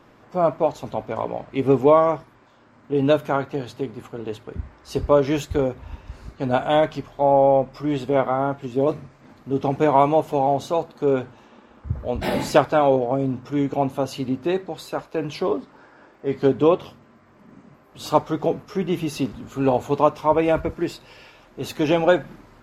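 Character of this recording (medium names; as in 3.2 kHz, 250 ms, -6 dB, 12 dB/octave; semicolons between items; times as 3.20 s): noise floor -53 dBFS; spectral tilt -6.0 dB/octave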